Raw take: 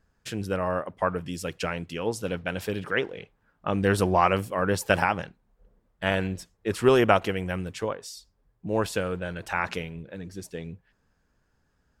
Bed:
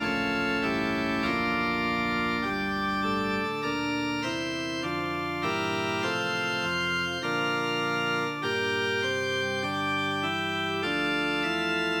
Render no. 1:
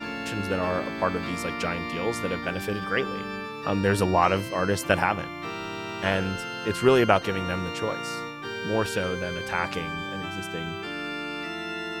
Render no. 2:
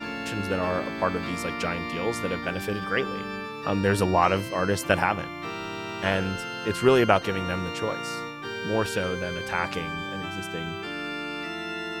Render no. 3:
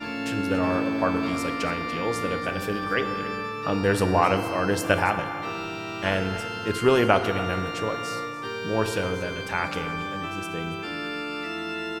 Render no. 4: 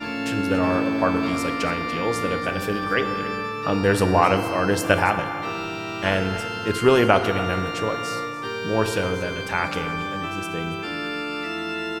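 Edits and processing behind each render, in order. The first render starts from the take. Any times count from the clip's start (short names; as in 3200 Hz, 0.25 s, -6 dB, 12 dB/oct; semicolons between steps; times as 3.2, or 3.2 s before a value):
add bed -5.5 dB
nothing audible
echo 0.282 s -16 dB; FDN reverb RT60 1.9 s, high-frequency decay 0.4×, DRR 8 dB
gain +3 dB; limiter -2 dBFS, peak gain reduction 1 dB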